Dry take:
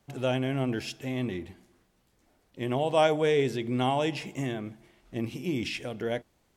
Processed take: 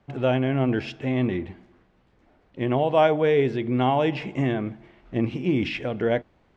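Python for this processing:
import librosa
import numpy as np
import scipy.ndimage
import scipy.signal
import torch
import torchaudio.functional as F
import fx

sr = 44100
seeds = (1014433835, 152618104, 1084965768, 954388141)

p1 = scipy.signal.sosfilt(scipy.signal.butter(2, 2500.0, 'lowpass', fs=sr, output='sos'), x)
p2 = fx.rider(p1, sr, range_db=4, speed_s=0.5)
y = p1 + F.gain(torch.from_numpy(p2), 0.0).numpy()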